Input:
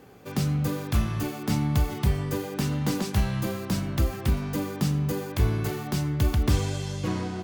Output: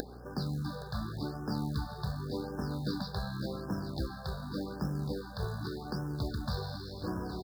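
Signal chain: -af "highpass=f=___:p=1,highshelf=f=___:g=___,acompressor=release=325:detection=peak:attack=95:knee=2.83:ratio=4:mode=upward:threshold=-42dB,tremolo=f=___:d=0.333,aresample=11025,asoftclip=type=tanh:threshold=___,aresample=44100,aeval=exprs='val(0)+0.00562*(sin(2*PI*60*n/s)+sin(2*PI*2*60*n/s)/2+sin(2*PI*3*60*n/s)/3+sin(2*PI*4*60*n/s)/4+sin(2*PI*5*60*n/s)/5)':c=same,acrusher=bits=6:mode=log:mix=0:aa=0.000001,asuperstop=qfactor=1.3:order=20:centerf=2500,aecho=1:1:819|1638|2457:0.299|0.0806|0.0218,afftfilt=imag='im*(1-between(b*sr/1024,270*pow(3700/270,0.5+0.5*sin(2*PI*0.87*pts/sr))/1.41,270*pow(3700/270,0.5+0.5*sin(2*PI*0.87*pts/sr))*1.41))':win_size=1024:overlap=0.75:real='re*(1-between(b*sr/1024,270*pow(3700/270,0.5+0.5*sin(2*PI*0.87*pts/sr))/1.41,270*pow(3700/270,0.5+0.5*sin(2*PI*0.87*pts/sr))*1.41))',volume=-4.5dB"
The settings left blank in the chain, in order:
180, 3800, 6.5, 71, -12.5dB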